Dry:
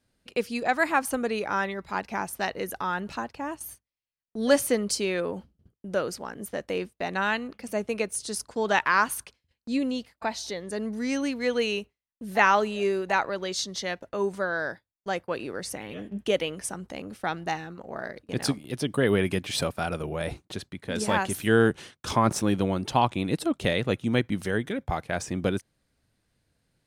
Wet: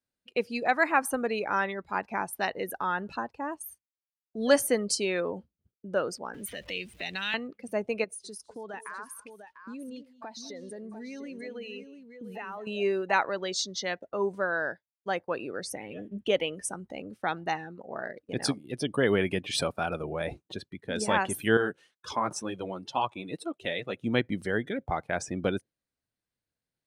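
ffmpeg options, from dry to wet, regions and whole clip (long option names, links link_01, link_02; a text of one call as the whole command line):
ffmpeg -i in.wav -filter_complex "[0:a]asettb=1/sr,asplit=3[link_01][link_02][link_03];[link_01]atrim=end=6.344[link_04];[link_02]atrim=start=6.34:end=7.34,asetpts=PTS-STARTPTS,afade=type=in:duration=0.004:curve=qsin,afade=type=out:start_time=0.996:duration=0.004:curve=qsin,aeval=exprs='val(0)+0.5*0.01*sgn(val(0))':channel_layout=same,equalizer=frequency=2600:width=0.66:gain=10,acrossover=split=160|3000[link_05][link_06][link_07];[link_06]acompressor=threshold=-38dB:ratio=4:attack=3.2:release=140:knee=2.83:detection=peak[link_08];[link_05][link_08][link_07]amix=inputs=3:normalize=0[link_09];[link_03]atrim=start=7.336[link_10];[link_04][link_09]acrossfade=duration=0.004:curve1=hsin:curve2=qsin[link_11];[link_11][link_10]acrossfade=duration=0.004:curve1=qsin:curve2=hsin,asettb=1/sr,asplit=3[link_12][link_13][link_14];[link_12]atrim=end=8.044[link_15];[link_13]atrim=start=8.04:end=12.67,asetpts=PTS-STARTPTS,afade=type=in:duration=0.004:curve=qsin,afade=type=out:start_time=4.626:duration=0.004:curve=qsin,acompressor=threshold=-36dB:ratio=6:attack=3.2:release=140:knee=1:detection=peak,aecho=1:1:202|223|697:0.211|0.126|0.422,atrim=end_sample=204183[link_16];[link_14]atrim=start=12.666[link_17];[link_15][link_16]acrossfade=duration=0.004:curve1=hsin:curve2=qsin[link_18];[link_18][link_17]acrossfade=duration=0.004:curve1=qsin:curve2=hsin,asettb=1/sr,asplit=3[link_19][link_20][link_21];[link_19]atrim=end=21.574[link_22];[link_20]atrim=start=21.57:end=23.97,asetpts=PTS-STARTPTS,afade=type=in:duration=0.004:curve=qsin,afade=type=out:start_time=2.396:duration=0.004:curve=qsin,highpass=56,lowshelf=frequency=400:gain=-7.5,flanger=delay=1.8:depth=4.9:regen=-38:speed=2:shape=sinusoidal[link_23];[link_21]atrim=start=23.966[link_24];[link_22][link_23]acrossfade=duration=0.004:curve1=hsin:curve2=qsin[link_25];[link_25][link_24]acrossfade=duration=0.004:curve1=qsin:curve2=hsin,afftdn=noise_reduction=16:noise_floor=-40,lowshelf=frequency=190:gain=-7.5" out.wav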